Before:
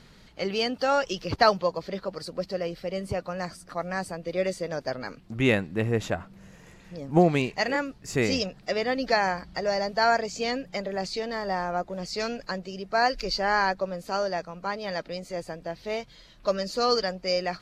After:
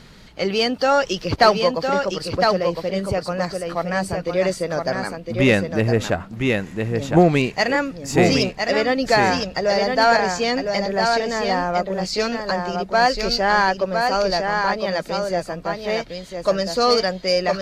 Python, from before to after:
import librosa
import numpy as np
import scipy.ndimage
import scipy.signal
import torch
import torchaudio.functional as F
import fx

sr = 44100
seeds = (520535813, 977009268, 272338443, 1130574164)

p1 = x + 10.0 ** (-5.0 / 20.0) * np.pad(x, (int(1009 * sr / 1000.0), 0))[:len(x)]
p2 = 10.0 ** (-20.5 / 20.0) * np.tanh(p1 / 10.0 ** (-20.5 / 20.0))
p3 = p1 + F.gain(torch.from_numpy(p2), -4.0).numpy()
y = F.gain(torch.from_numpy(p3), 3.5).numpy()